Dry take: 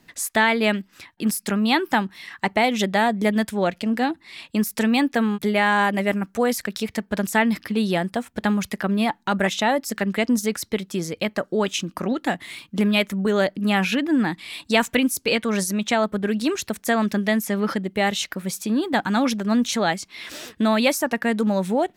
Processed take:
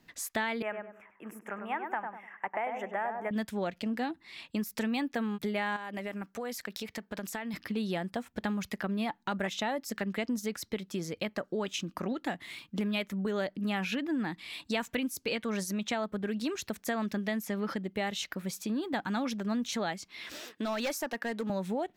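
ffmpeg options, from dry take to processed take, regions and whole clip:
ffmpeg -i in.wav -filter_complex "[0:a]asettb=1/sr,asplit=3[link_01][link_02][link_03];[link_01]atrim=end=0.624[link_04];[link_02]atrim=start=0.62:end=3.31,asetpts=PTS-STARTPTS,afade=type=in:duration=0.004:curve=qsin,afade=type=out:start_time=2.686:duration=0.004:curve=qsin,asuperstop=centerf=4300:order=4:qfactor=1.1,acrossover=split=500 2100:gain=0.112 1 0.141[link_05][link_06][link_07];[link_05][link_06][link_07]amix=inputs=3:normalize=0,asplit=2[link_08][link_09];[link_09]adelay=99,lowpass=frequency=1200:poles=1,volume=-5dB,asplit=2[link_10][link_11];[link_11]adelay=99,lowpass=frequency=1200:poles=1,volume=0.35,asplit=2[link_12][link_13];[link_13]adelay=99,lowpass=frequency=1200:poles=1,volume=0.35,asplit=2[link_14][link_15];[link_15]adelay=99,lowpass=frequency=1200:poles=1,volume=0.35[link_16];[link_08][link_10][link_12][link_14][link_16]amix=inputs=5:normalize=0,atrim=end_sample=118629[link_17];[link_03]atrim=start=3.306[link_18];[link_04][link_17]acrossfade=duration=0.004:curve1=hsin:curve2=qsin[link_19];[link_19][link_18]acrossfade=duration=0.004:curve1=qsin:curve2=hsin,asettb=1/sr,asplit=3[link_20][link_21][link_22];[link_20]atrim=end=5.764[link_23];[link_21]atrim=start=5.76:end=7.54,asetpts=PTS-STARTPTS,afade=type=in:duration=0.004:curve=qsin,afade=type=out:start_time=1.776:duration=0.004:curve=qsin,lowshelf=frequency=180:gain=-9.5,acompressor=threshold=-26dB:ratio=5:attack=3.2:release=140:knee=1:detection=peak,aeval=exprs='(mod(4.47*val(0)+1,2)-1)/4.47':channel_layout=same[link_24];[link_22]atrim=start=7.536[link_25];[link_23][link_24]acrossfade=duration=0.004:curve1=hsin:curve2=qsin[link_26];[link_26][link_25]acrossfade=duration=0.004:curve1=qsin:curve2=hsin,asettb=1/sr,asplit=3[link_27][link_28][link_29];[link_27]atrim=end=20.404[link_30];[link_28]atrim=start=20.4:end=21.5,asetpts=PTS-STARTPTS,afade=type=in:duration=0.004:curve=qsin,afade=type=out:start_time=1.096:duration=0.004:curve=qsin,highpass=280,asoftclip=type=hard:threshold=-18dB[link_31];[link_29]atrim=start=21.496[link_32];[link_30][link_31]acrossfade=duration=0.004:curve1=hsin:curve2=qsin[link_33];[link_33][link_32]acrossfade=duration=0.004:curve1=qsin:curve2=hsin,equalizer=frequency=9500:width=1.6:gain=-5.5,acompressor=threshold=-24dB:ratio=2.5,volume=-7dB" out.wav

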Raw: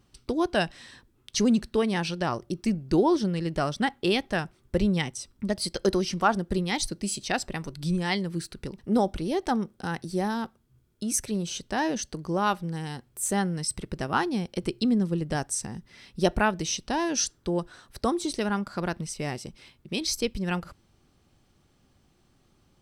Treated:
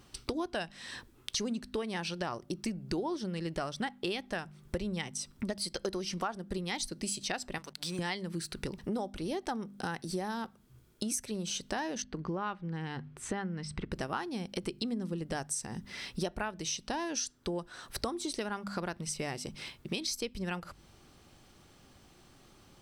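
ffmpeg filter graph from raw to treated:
ffmpeg -i in.wav -filter_complex "[0:a]asettb=1/sr,asplit=3[link_01][link_02][link_03];[link_01]atrim=end=7.584[link_04];[link_02]atrim=start=7.58:end=7.99,asetpts=PTS-STARTPTS,afade=type=in:duration=0.004:curve=qsin,afade=type=out:start_time=0.406:duration=0.004:curve=qsin,highpass=frequency=970:poles=1,highshelf=frequency=11000:gain=-4.5,aeval=exprs='sgn(val(0))*max(abs(val(0))-0.00141,0)':channel_layout=same[link_05];[link_03]atrim=start=7.986[link_06];[link_04][link_05]acrossfade=duration=0.004:curve1=hsin:curve2=qsin[link_07];[link_07][link_06]acrossfade=duration=0.004:curve1=qsin:curve2=hsin,asettb=1/sr,asplit=3[link_08][link_09][link_10];[link_08]atrim=end=12.024[link_11];[link_09]atrim=start=12.02:end=13.92,asetpts=PTS-STARTPTS,afade=type=in:duration=0.004:curve=qsin,afade=type=out:start_time=1.896:duration=0.004:curve=qsin,lowpass=2400,equalizer=frequency=650:width_type=o:width=1.2:gain=-5.5[link_12];[link_10]atrim=start=13.916[link_13];[link_11][link_12]acrossfade=duration=0.004:curve1=hsin:curve2=qsin[link_14];[link_14][link_13]acrossfade=duration=0.004:curve1=qsin:curve2=hsin,lowshelf=frequency=340:gain=-5.5,bandreject=frequency=50.03:width_type=h:width=4,bandreject=frequency=100.06:width_type=h:width=4,bandreject=frequency=150.09:width_type=h:width=4,bandreject=frequency=200.12:width_type=h:width=4,bandreject=frequency=250.15:width_type=h:width=4,acompressor=threshold=-42dB:ratio=6,volume=8.5dB" out.wav

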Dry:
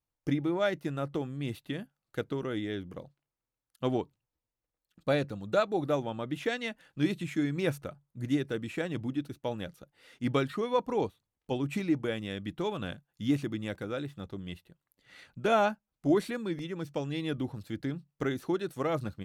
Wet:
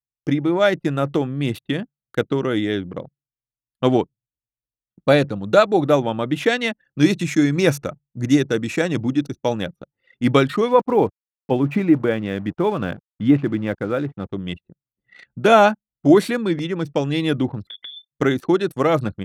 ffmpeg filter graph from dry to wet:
ffmpeg -i in.wav -filter_complex "[0:a]asettb=1/sr,asplit=3[link_01][link_02][link_03];[link_01]atrim=end=6.844[link_04];[link_02]atrim=start=6.84:end=9.63,asetpts=PTS-STARTPTS,afade=type=in:duration=0.004:curve=qsin,afade=type=out:start_time=2.786:duration=0.004:curve=qsin,equalizer=frequency=6000:width=2.5:gain=9,bandreject=frequency=3100:width=15[link_05];[link_03]atrim=start=9.626[link_06];[link_04][link_05]acrossfade=duration=0.004:curve1=hsin:curve2=qsin[link_07];[link_07][link_06]acrossfade=duration=0.004:curve1=qsin:curve2=hsin,asettb=1/sr,asplit=3[link_08][link_09][link_10];[link_08]atrim=end=10.684[link_11];[link_09]atrim=start=10.68:end=14.31,asetpts=PTS-STARTPTS,afade=type=in:duration=0.004:curve=qsin,afade=type=out:start_time=3.626:duration=0.004:curve=qsin,lowpass=2000,aeval=exprs='val(0)*gte(abs(val(0)),0.00282)':channel_layout=same[link_12];[link_10]atrim=start=14.306[link_13];[link_11][link_12]acrossfade=duration=0.004:curve1=hsin:curve2=qsin[link_14];[link_14][link_13]acrossfade=duration=0.004:curve1=qsin:curve2=hsin,asettb=1/sr,asplit=3[link_15][link_16][link_17];[link_15]atrim=end=17.674[link_18];[link_16]atrim=start=17.67:end=18.12,asetpts=PTS-STARTPTS,afade=type=in:duration=0.004:curve=qsin,afade=type=out:start_time=0.446:duration=0.004:curve=qsin,highpass=160,acompressor=threshold=-46dB:ratio=6:attack=3.2:release=140:knee=1:detection=peak,lowpass=frequency=3100:width_type=q:width=0.5098,lowpass=frequency=3100:width_type=q:width=0.6013,lowpass=frequency=3100:width_type=q:width=0.9,lowpass=frequency=3100:width_type=q:width=2.563,afreqshift=-3700[link_19];[link_17]atrim=start=18.116[link_20];[link_18][link_19]acrossfade=duration=0.004:curve1=hsin:curve2=qsin[link_21];[link_21][link_20]acrossfade=duration=0.004:curve1=qsin:curve2=hsin,dynaudnorm=framelen=370:gausssize=3:maxgain=4dB,highpass=98,anlmdn=0.0398,volume=9dB" out.wav

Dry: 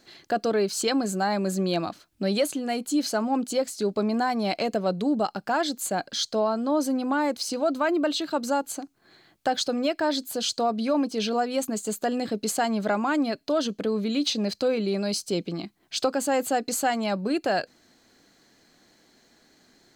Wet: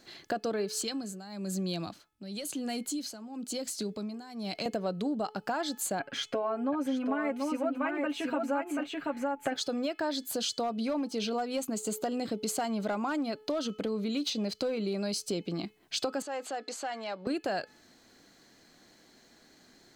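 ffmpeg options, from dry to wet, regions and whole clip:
ffmpeg -i in.wav -filter_complex "[0:a]asettb=1/sr,asplit=3[link_01][link_02][link_03];[link_01]atrim=end=0.734[link_04];[link_02]atrim=start=0.73:end=4.66,asetpts=PTS-STARTPTS,afade=type=in:duration=0.004:curve=qsin,afade=type=out:start_time=3.926:duration=0.004:curve=qsin,acrossover=split=230|3000[link_05][link_06][link_07];[link_06]acompressor=threshold=-37dB:ratio=3:attack=3.2:release=140:knee=2.83:detection=peak[link_08];[link_05][link_08][link_07]amix=inputs=3:normalize=0,tremolo=f=1:d=0.79[link_09];[link_03]atrim=start=4.656[link_10];[link_04][link_09]acrossfade=duration=0.004:curve1=hsin:curve2=qsin[link_11];[link_11][link_10]acrossfade=duration=0.004:curve1=qsin:curve2=hsin,asettb=1/sr,asplit=3[link_12][link_13][link_14];[link_12]atrim=end=5.994[link_15];[link_13]atrim=start=5.99:end=9.56,asetpts=PTS-STARTPTS,afade=type=in:duration=0.004:curve=qsin,afade=type=out:start_time=3.566:duration=0.004:curve=qsin,highshelf=frequency=3200:width_type=q:width=3:gain=-9.5,aecho=1:1:7.3:0.85,atrim=end_sample=157437,aecho=1:1:733:0.562,atrim=end_sample=157437[link_16];[link_14]atrim=start=9.556[link_17];[link_15][link_16]acrossfade=duration=0.004:curve1=hsin:curve2=qsin[link_18];[link_18][link_17]acrossfade=duration=0.004:curve1=qsin:curve2=hsin,asettb=1/sr,asplit=3[link_19][link_20][link_21];[link_19]atrim=end=10.554[link_22];[link_20]atrim=start=10.55:end=15.02,asetpts=PTS-STARTPTS,afade=type=in:duration=0.004:curve=qsin,afade=type=out:start_time=4.466:duration=0.004:curve=qsin,bandreject=frequency=1700:width=11,volume=18dB,asoftclip=hard,volume=-18dB[link_23];[link_21]atrim=start=15.016[link_24];[link_22][link_23]acrossfade=duration=0.004:curve1=hsin:curve2=qsin[link_25];[link_25][link_24]acrossfade=duration=0.004:curve1=qsin:curve2=hsin,asettb=1/sr,asplit=3[link_26][link_27][link_28];[link_26]atrim=end=16.224[link_29];[link_27]atrim=start=16.22:end=17.27,asetpts=PTS-STARTPTS,afade=type=in:duration=0.004:curve=qsin,afade=type=out:start_time=1.046:duration=0.004:curve=qsin,acompressor=threshold=-30dB:ratio=5:attack=3.2:release=140:knee=1:detection=peak,asoftclip=type=hard:threshold=-27.5dB,highpass=440,lowpass=5400[link_30];[link_28]atrim=start=17.266[link_31];[link_29][link_30]acrossfade=duration=0.004:curve1=hsin:curve2=qsin[link_32];[link_32][link_31]acrossfade=duration=0.004:curve1=qsin:curve2=hsin,bandreject=frequency=429.9:width_type=h:width=4,bandreject=frequency=859.8:width_type=h:width=4,bandreject=frequency=1289.7:width_type=h:width=4,bandreject=frequency=1719.6:width_type=h:width=4,bandreject=frequency=2149.5:width_type=h:width=4,bandreject=frequency=2579.4:width_type=h:width=4,bandreject=frequency=3009.3:width_type=h:width=4,bandreject=frequency=3439.2:width_type=h:width=4,acompressor=threshold=-30dB:ratio=4" out.wav

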